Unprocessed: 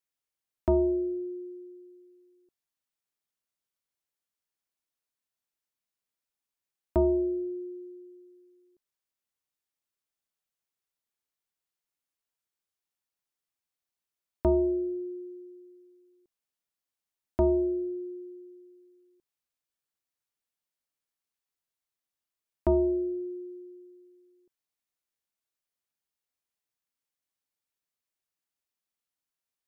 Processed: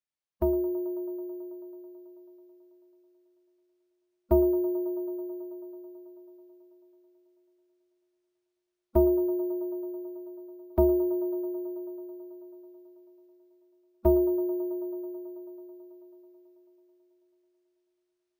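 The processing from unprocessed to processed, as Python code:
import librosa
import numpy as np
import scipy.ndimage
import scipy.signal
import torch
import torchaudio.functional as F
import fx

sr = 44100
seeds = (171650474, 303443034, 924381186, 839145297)

p1 = fx.rider(x, sr, range_db=4, speed_s=2.0)
p2 = fx.stretch_vocoder(p1, sr, factor=0.62)
p3 = p2 + fx.echo_wet_bandpass(p2, sr, ms=109, feedback_pct=84, hz=700.0, wet_db=-13.0, dry=0)
y = np.repeat(scipy.signal.resample_poly(p3, 1, 3), 3)[:len(p3)]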